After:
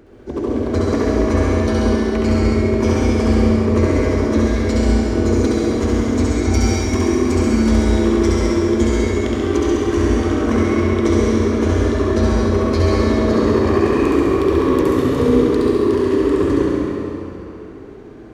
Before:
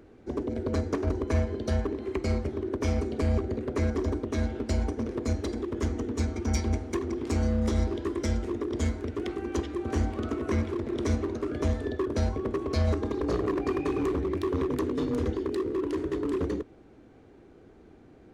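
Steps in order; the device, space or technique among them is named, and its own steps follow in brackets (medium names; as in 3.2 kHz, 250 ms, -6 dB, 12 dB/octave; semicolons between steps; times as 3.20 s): tunnel (flutter echo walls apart 11.6 m, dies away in 1.2 s; reverberation RT60 3.1 s, pre-delay 63 ms, DRR -4 dB); trim +6 dB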